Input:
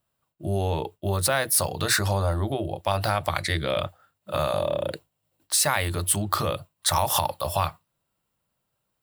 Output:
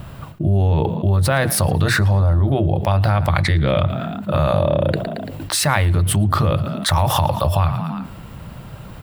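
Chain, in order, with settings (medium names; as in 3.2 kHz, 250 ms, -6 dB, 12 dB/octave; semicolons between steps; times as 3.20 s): tone controls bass +11 dB, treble -12 dB; on a send: frequency-shifting echo 113 ms, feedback 46%, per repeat +36 Hz, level -22.5 dB; on the sum: level flattener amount 70%; trim -1 dB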